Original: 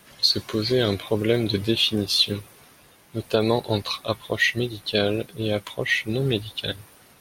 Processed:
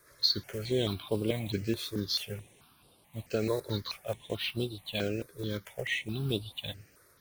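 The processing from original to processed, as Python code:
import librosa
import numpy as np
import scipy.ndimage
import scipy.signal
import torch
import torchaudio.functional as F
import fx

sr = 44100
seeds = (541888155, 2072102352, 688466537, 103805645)

y = fx.block_float(x, sr, bits=5)
y = fx.phaser_held(y, sr, hz=4.6, low_hz=790.0, high_hz=6500.0)
y = y * 10.0 ** (-7.0 / 20.0)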